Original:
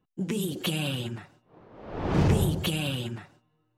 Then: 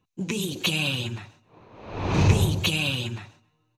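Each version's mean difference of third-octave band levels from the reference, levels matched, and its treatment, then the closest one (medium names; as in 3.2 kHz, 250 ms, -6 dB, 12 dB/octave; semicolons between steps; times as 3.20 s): 2.5 dB: graphic EQ with 31 bands 100 Hz +9 dB, 1 kHz +6 dB, 2.5 kHz +11 dB, 4 kHz +10 dB, 6.3 kHz +12 dB; on a send: feedback delay 135 ms, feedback 33%, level -23 dB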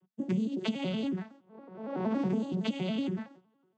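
8.5 dB: vocoder on a broken chord minor triad, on F#3, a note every 93 ms; compression 5:1, threshold -33 dBFS, peak gain reduction 12.5 dB; trim +5 dB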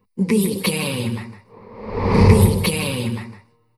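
4.0 dB: rippled EQ curve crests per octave 0.9, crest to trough 14 dB; on a send: delay 157 ms -11 dB; on the sum: trim +8 dB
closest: first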